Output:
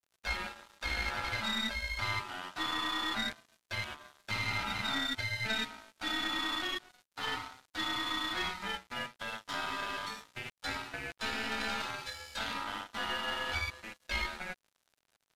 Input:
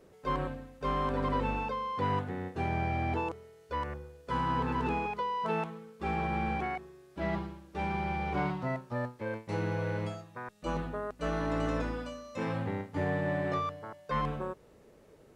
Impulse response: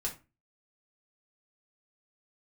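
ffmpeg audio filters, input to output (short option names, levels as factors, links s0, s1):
-filter_complex "[0:a]flanger=delay=7.5:depth=4.9:regen=-2:speed=1.3:shape=triangular,asplit=2[s0][s1];[s1]acompressor=threshold=0.00631:ratio=16,volume=1.19[s2];[s0][s2]amix=inputs=2:normalize=0,highpass=f=62:p=1,highshelf=f=2600:g=9,aeval=exprs='val(0)*sin(2*PI*1100*n/s)':c=same,areverse,acompressor=mode=upward:threshold=0.00251:ratio=2.5,areverse,equalizer=f=125:t=o:w=1:g=-3,equalizer=f=250:t=o:w=1:g=4,equalizer=f=500:t=o:w=1:g=-7,equalizer=f=4000:t=o:w=1:g=11,asplit=2[s3][s4];[s4]adelay=113,lowpass=f=890:p=1,volume=0.141,asplit=2[s5][s6];[s6]adelay=113,lowpass=f=890:p=1,volume=0.29,asplit=2[s7][s8];[s8]adelay=113,lowpass=f=890:p=1,volume=0.29[s9];[s3][s5][s7][s9]amix=inputs=4:normalize=0,aeval=exprs='sgn(val(0))*max(abs(val(0))-0.00398,0)':c=same,aresample=32000,aresample=44100,aeval=exprs='(tanh(20*val(0)+0.45)-tanh(0.45))/20':c=same,volume=1.26"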